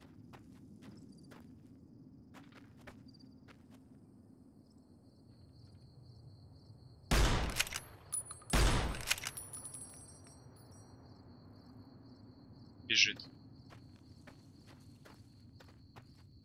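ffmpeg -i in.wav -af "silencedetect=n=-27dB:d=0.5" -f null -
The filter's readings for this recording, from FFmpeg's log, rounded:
silence_start: 0.00
silence_end: 7.11 | silence_duration: 7.11
silence_start: 9.27
silence_end: 12.90 | silence_duration: 3.63
silence_start: 13.11
silence_end: 16.45 | silence_duration: 3.34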